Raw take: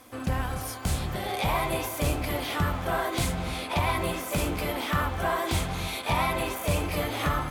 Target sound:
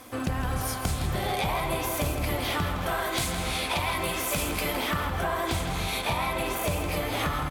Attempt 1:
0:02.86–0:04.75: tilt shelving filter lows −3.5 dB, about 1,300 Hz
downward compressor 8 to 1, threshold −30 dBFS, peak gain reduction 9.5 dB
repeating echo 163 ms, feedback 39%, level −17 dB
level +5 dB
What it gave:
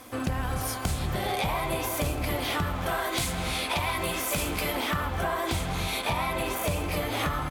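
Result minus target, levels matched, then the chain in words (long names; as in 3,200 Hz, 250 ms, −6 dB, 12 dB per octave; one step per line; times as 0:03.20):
echo-to-direct −8 dB
0:02.86–0:04.75: tilt shelving filter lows −3.5 dB, about 1,300 Hz
downward compressor 8 to 1, threshold −30 dBFS, peak gain reduction 9.5 dB
repeating echo 163 ms, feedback 39%, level −9 dB
level +5 dB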